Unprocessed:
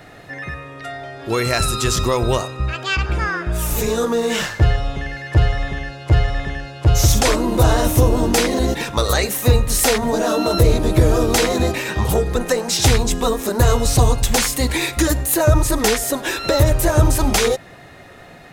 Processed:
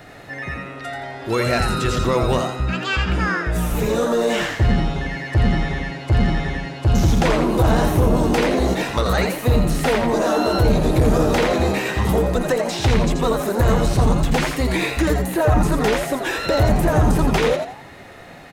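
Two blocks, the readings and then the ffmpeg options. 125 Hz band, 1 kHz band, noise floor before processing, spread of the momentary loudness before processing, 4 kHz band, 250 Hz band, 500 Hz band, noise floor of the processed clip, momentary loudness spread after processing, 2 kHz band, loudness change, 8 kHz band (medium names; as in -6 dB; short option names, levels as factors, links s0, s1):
-1.5 dB, +0.5 dB, -42 dBFS, 9 LU, -5.0 dB, +1.5 dB, -0.5 dB, -40 dBFS, 7 LU, -0.5 dB, -1.5 dB, -11.0 dB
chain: -filter_complex "[0:a]acrossover=split=3300[s0][s1];[s1]acompressor=threshold=0.02:ratio=16[s2];[s0][s2]amix=inputs=2:normalize=0,asoftclip=type=tanh:threshold=0.316,asplit=5[s3][s4][s5][s6][s7];[s4]adelay=85,afreqshift=120,volume=0.501[s8];[s5]adelay=170,afreqshift=240,volume=0.16[s9];[s6]adelay=255,afreqshift=360,volume=0.0513[s10];[s7]adelay=340,afreqshift=480,volume=0.0164[s11];[s3][s8][s9][s10][s11]amix=inputs=5:normalize=0"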